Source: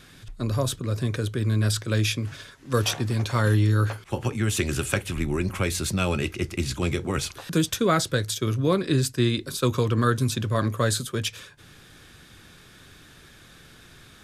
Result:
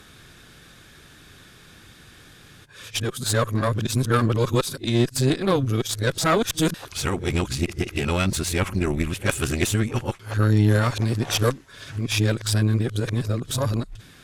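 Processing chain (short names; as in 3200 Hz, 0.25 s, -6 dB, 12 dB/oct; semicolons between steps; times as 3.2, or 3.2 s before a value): whole clip reversed; added harmonics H 6 -19 dB, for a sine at -6 dBFS; gain +1.5 dB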